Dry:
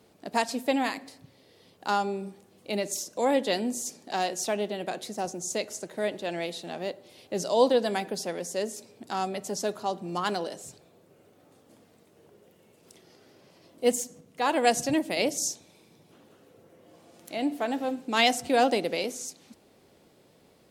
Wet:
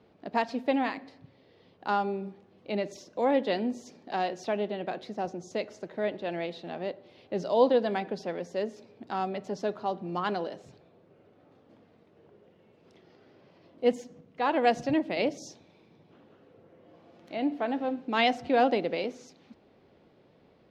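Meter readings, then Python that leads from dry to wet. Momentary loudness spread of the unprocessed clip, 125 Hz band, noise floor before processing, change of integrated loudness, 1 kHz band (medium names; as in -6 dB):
13 LU, 0.0 dB, -60 dBFS, -1.5 dB, -1.0 dB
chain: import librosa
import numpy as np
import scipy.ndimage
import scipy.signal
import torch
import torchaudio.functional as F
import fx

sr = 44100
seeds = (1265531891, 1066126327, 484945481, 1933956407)

y = fx.air_absorb(x, sr, metres=260.0)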